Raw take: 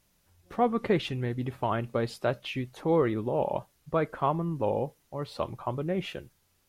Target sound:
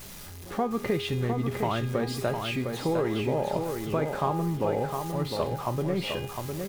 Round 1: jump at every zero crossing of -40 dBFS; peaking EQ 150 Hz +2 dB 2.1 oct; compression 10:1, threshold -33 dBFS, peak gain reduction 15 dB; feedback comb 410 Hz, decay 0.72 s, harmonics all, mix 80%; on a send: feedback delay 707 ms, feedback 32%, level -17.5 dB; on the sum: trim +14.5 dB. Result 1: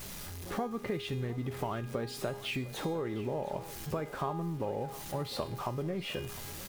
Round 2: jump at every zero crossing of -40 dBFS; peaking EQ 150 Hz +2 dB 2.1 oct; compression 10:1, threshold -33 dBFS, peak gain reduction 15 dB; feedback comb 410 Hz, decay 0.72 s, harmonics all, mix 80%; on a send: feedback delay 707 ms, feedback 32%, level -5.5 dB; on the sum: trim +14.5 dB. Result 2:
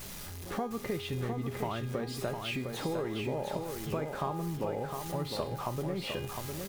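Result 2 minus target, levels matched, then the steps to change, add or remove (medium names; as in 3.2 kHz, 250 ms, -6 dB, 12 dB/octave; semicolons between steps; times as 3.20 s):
compression: peak gain reduction +7.5 dB
change: compression 10:1, threshold -24.5 dBFS, peak gain reduction 7 dB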